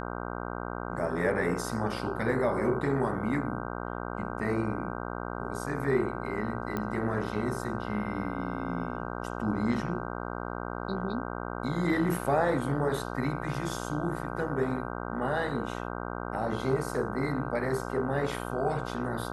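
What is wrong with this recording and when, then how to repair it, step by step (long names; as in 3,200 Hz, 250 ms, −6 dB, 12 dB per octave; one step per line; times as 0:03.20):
mains buzz 60 Hz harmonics 26 −36 dBFS
0:06.77: click −19 dBFS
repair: click removal
hum removal 60 Hz, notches 26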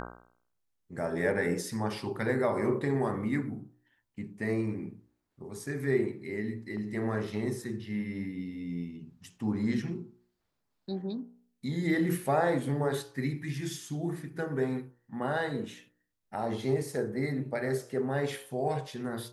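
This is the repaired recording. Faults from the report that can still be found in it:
none of them is left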